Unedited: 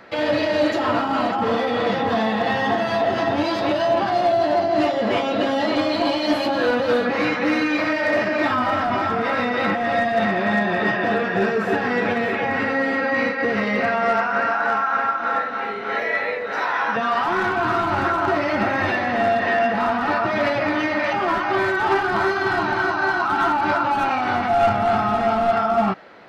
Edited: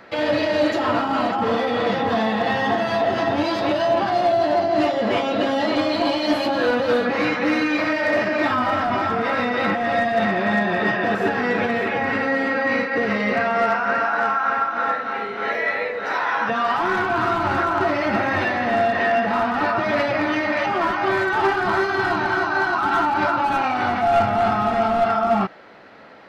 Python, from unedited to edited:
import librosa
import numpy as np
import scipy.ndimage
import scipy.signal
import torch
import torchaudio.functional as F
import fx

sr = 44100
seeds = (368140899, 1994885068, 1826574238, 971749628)

y = fx.edit(x, sr, fx.cut(start_s=11.15, length_s=0.47), tone=tone)